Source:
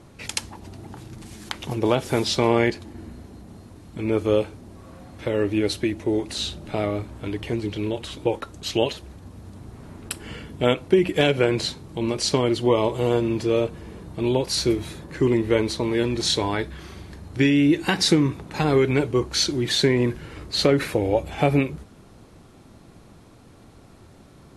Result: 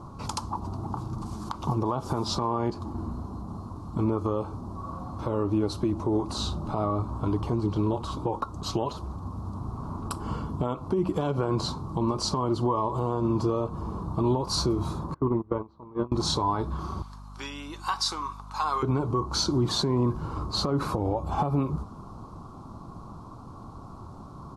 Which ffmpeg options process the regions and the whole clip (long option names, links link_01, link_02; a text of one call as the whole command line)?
ffmpeg -i in.wav -filter_complex "[0:a]asettb=1/sr,asplit=3[link_01][link_02][link_03];[link_01]atrim=end=15.144[link_04];[link_02]atrim=start=15.14:end=16.12,asetpts=PTS-STARTPTS,afade=type=in:duration=0.004:curve=qsin,afade=type=out:start_time=0.976:duration=0.004:curve=qsin,agate=range=-27dB:threshold=-20dB:ratio=16:release=100:detection=peak,lowpass=2000[link_05];[link_03]atrim=start=16.116[link_06];[link_04][link_05]acrossfade=duration=0.004:curve1=hsin:curve2=qsin[link_07];[link_07][link_06]acrossfade=duration=0.004:curve1=qsin:curve2=hsin,asettb=1/sr,asplit=3[link_08][link_09][link_10];[link_08]atrim=end=17.024[link_11];[link_09]atrim=start=17.02:end=18.83,asetpts=PTS-STARTPTS,afade=type=in:duration=0.004:curve=qsin,afade=type=out:start_time=1.806:duration=0.004:curve=qsin,highpass=1500,aeval=exprs='val(0)+0.00355*(sin(2*PI*50*n/s)+sin(2*PI*2*50*n/s)/2+sin(2*PI*3*50*n/s)/3+sin(2*PI*4*50*n/s)/4+sin(2*PI*5*50*n/s)/5)':channel_layout=same[link_12];[link_10]atrim=start=18.826[link_13];[link_11][link_12]acrossfade=duration=0.004:curve1=hsin:curve2=qsin[link_14];[link_14][link_13]acrossfade=duration=0.004:curve1=qsin:curve2=hsin,firequalizer=gain_entry='entry(160,0);entry(500,-7);entry(1100,10);entry(1800,-24);entry(4600,-9);entry(10000,-15)':delay=0.05:min_phase=1,acompressor=threshold=-23dB:ratio=3,alimiter=limit=-22.5dB:level=0:latency=1:release=174,volume=6.5dB" out.wav